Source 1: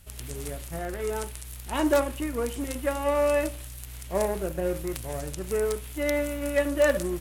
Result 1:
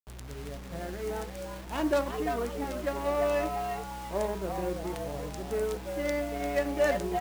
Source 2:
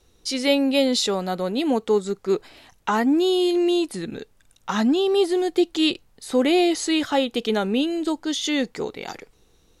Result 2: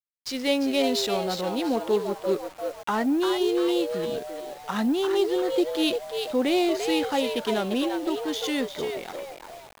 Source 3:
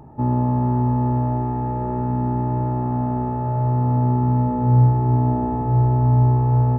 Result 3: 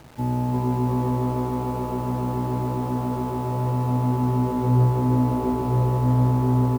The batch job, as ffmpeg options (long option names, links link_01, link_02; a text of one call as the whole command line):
ffmpeg -i in.wav -filter_complex "[0:a]asplit=6[link_01][link_02][link_03][link_04][link_05][link_06];[link_02]adelay=346,afreqshift=130,volume=-6dB[link_07];[link_03]adelay=692,afreqshift=260,volume=-13.7dB[link_08];[link_04]adelay=1038,afreqshift=390,volume=-21.5dB[link_09];[link_05]adelay=1384,afreqshift=520,volume=-29.2dB[link_10];[link_06]adelay=1730,afreqshift=650,volume=-37dB[link_11];[link_01][link_07][link_08][link_09][link_10][link_11]amix=inputs=6:normalize=0,adynamicsmooth=sensitivity=5.5:basefreq=1300,acrusher=bits=6:mix=0:aa=0.000001,volume=-4.5dB" out.wav